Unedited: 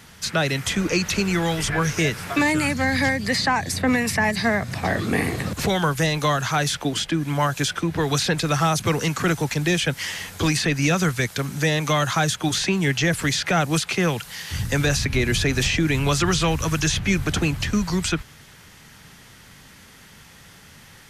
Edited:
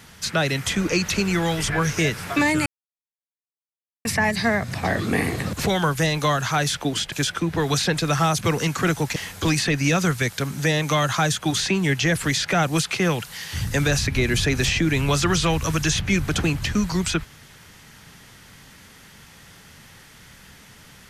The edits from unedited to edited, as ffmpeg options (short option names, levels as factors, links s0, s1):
-filter_complex "[0:a]asplit=5[s0][s1][s2][s3][s4];[s0]atrim=end=2.66,asetpts=PTS-STARTPTS,afade=t=out:st=2.656:d=0.004:c=hsin[s5];[s1]atrim=start=2.66:end=4.05,asetpts=PTS-STARTPTS,volume=0[s6];[s2]atrim=start=4.05:end=7.122,asetpts=PTS-STARTPTS,afade=t=in:d=0.004:c=hsin[s7];[s3]atrim=start=7.528:end=9.572[s8];[s4]atrim=start=10.138[s9];[s5][s6][s7]concat=n=3:v=0:a=1[s10];[s10][s8]acrossfade=d=0.004:c1=hsin:c2=hsin[s11];[s11][s9]acrossfade=d=0.004:c1=hsin:c2=hsin"